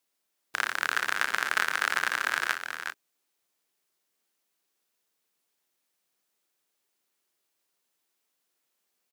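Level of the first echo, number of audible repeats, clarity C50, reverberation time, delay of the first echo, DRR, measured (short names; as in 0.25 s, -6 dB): -12.5 dB, 2, none, none, 59 ms, none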